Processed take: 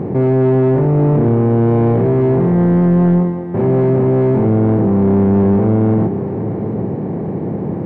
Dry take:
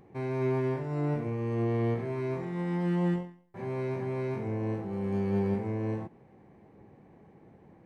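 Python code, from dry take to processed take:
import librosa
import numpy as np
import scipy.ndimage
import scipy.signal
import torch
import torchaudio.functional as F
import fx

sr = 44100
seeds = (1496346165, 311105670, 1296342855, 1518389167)

y = fx.bin_compress(x, sr, power=0.6)
y = fx.leveller(y, sr, passes=2)
y = scipy.signal.sosfilt(scipy.signal.butter(2, 87.0, 'highpass', fs=sr, output='sos'), y)
y = fx.high_shelf(y, sr, hz=2400.0, db=-11.0)
y = y + 10.0 ** (-13.5 / 20.0) * np.pad(y, (int(778 * sr / 1000.0), 0))[:len(y)]
y = 10.0 ** (-22.5 / 20.0) * np.tanh(y / 10.0 ** (-22.5 / 20.0))
y = fx.tilt_shelf(y, sr, db=8.0, hz=1300.0)
y = F.gain(torch.from_numpy(y), 8.0).numpy()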